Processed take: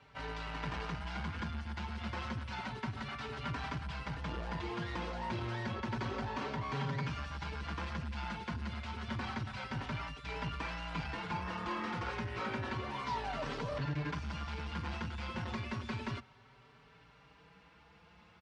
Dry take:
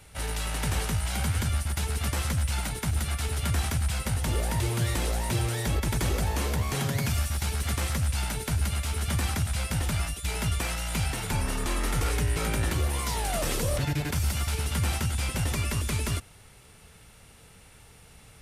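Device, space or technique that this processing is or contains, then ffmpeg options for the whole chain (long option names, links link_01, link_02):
barber-pole flanger into a guitar amplifier: -filter_complex "[0:a]asplit=2[link_01][link_02];[link_02]adelay=4.7,afreqshift=0.3[link_03];[link_01][link_03]amix=inputs=2:normalize=1,asoftclip=type=tanh:threshold=-25.5dB,highpass=81,equalizer=frequency=89:width_type=q:width=4:gain=-8,equalizer=frequency=220:width_type=q:width=4:gain=4,equalizer=frequency=1000:width_type=q:width=4:gain=9,equalizer=frequency=1500:width_type=q:width=4:gain=4,equalizer=frequency=3700:width_type=q:width=4:gain=-3,lowpass=frequency=4400:width=0.5412,lowpass=frequency=4400:width=1.3066,volume=-4dB"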